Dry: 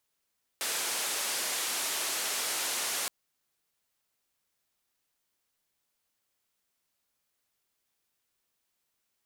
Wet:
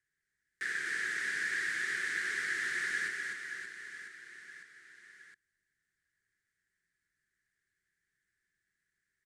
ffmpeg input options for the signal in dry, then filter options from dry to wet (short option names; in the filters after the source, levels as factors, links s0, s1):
-f lavfi -i "anoisesrc=c=white:d=2.47:r=44100:seed=1,highpass=f=360,lowpass=f=11000,volume=-24.5dB"
-filter_complex "[0:a]acrossover=split=4500[s0][s1];[s1]acompressor=threshold=0.01:ratio=4:attack=1:release=60[s2];[s0][s2]amix=inputs=2:normalize=0,firequalizer=gain_entry='entry(170,0);entry(250,-10);entry(380,-3);entry(550,-25);entry(910,-27);entry(1700,12);entry(2600,-13);entry(8500,-9);entry(14000,-30)':delay=0.05:min_phase=1,aecho=1:1:250|575|997.5|1547|2261:0.631|0.398|0.251|0.158|0.1"